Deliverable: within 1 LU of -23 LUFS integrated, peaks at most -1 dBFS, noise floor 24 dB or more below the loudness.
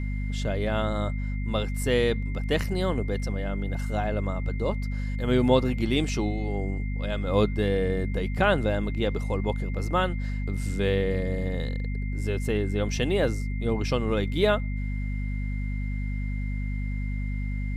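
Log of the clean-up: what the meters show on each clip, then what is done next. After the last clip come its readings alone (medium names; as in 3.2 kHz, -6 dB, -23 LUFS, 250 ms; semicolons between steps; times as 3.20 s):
hum 50 Hz; highest harmonic 250 Hz; hum level -27 dBFS; steady tone 2.1 kHz; tone level -43 dBFS; loudness -27.5 LUFS; peak level -7.0 dBFS; loudness target -23.0 LUFS
-> de-hum 50 Hz, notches 5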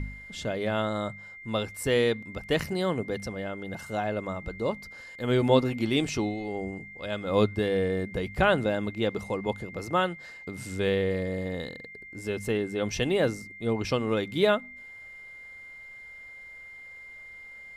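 hum not found; steady tone 2.1 kHz; tone level -43 dBFS
-> band-stop 2.1 kHz, Q 30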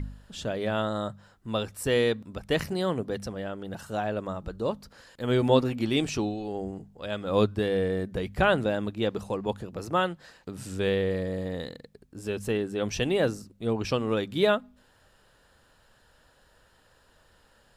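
steady tone not found; loudness -29.0 LUFS; peak level -8.0 dBFS; loudness target -23.0 LUFS
-> trim +6 dB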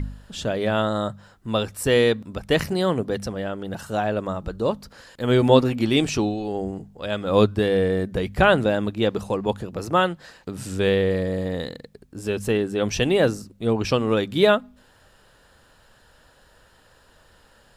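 loudness -23.0 LUFS; peak level -2.0 dBFS; noise floor -56 dBFS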